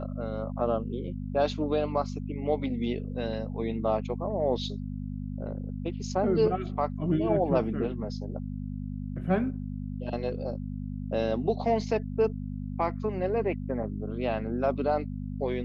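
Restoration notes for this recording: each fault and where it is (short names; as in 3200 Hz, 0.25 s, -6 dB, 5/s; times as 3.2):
hum 50 Hz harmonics 5 -35 dBFS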